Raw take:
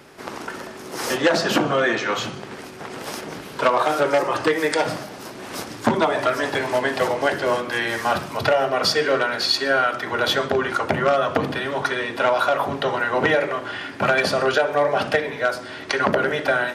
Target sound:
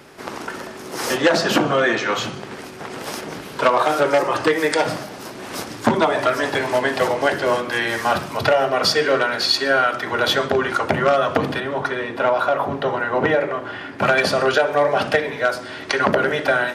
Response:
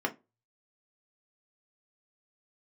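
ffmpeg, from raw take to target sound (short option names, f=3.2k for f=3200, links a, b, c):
-filter_complex "[0:a]asettb=1/sr,asplit=3[a][b][c];[a]atrim=end=11.604[d];[b]atrim=start=11.6:end=13.99,asetpts=PTS-STARTPTS,afade=t=in:d=0.004:c=qsin,afade=t=out:st=2.386:d=0.004:c=qsin,highshelf=f=2.4k:g=-10[e];[c]atrim=start=13.986[f];[d][e]acrossfade=d=0.004:c1=hsin:c2=qsin[g];[g][f]acrossfade=d=0.004:c1=qsin:c2=hsin,volume=2dB"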